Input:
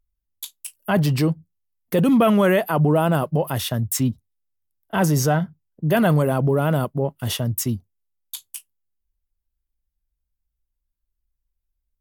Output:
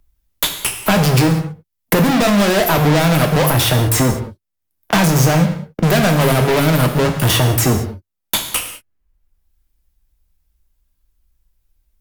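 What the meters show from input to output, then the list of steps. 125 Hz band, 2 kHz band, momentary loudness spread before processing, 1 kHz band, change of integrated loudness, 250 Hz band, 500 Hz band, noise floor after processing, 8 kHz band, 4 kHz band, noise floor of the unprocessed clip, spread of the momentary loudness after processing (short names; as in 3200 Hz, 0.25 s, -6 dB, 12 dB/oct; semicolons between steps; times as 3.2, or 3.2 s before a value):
+6.5 dB, +9.5 dB, 17 LU, +7.0 dB, +5.5 dB, +4.5 dB, +4.5 dB, -75 dBFS, +10.0 dB, +13.0 dB, -80 dBFS, 8 LU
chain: in parallel at 0 dB: limiter -16.5 dBFS, peak gain reduction 9 dB; on the sum: sample leveller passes 5; soft clip -10 dBFS, distortion -19 dB; non-linear reverb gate 0.22 s falling, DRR 4 dB; three-band squash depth 70%; gain -3 dB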